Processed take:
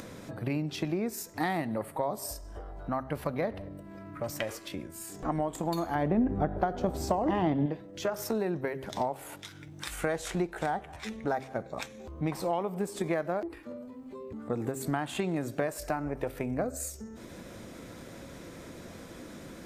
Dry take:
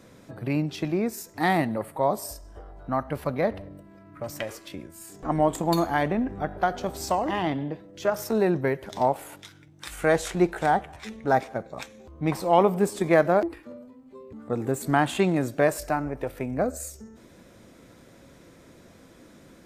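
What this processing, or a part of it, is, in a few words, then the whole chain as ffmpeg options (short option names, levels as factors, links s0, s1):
upward and downward compression: -filter_complex "[0:a]acompressor=mode=upward:threshold=0.0141:ratio=2.5,acompressor=threshold=0.0447:ratio=8,bandreject=f=132.9:t=h:w=4,bandreject=f=265.8:t=h:w=4,bandreject=f=398.7:t=h:w=4,asettb=1/sr,asplit=3[s0][s1][s2];[s0]atrim=end=5.954[s3];[s1]atrim=start=5.95:end=7.66,asetpts=PTS-STARTPTS,afade=t=in:d=0.004:c=qsin,afade=t=out:st=1.706:d=0.004:c=qsin,tiltshelf=f=1100:g=6.5[s4];[s2]atrim=start=7.656[s5];[s3][s4]acrossfade=d=0.004:c1=hsin:c2=qsin[s6];[s6][s5]acrossfade=d=0.004:c1=qsin:c2=hsin"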